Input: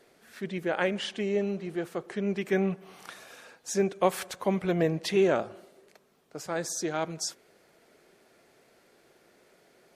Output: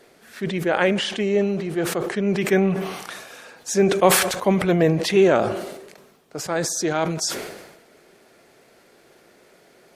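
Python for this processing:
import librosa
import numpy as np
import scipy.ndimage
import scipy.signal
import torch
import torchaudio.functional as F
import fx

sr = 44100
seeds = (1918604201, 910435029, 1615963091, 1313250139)

y = fx.sustainer(x, sr, db_per_s=52.0)
y = y * 10.0 ** (7.5 / 20.0)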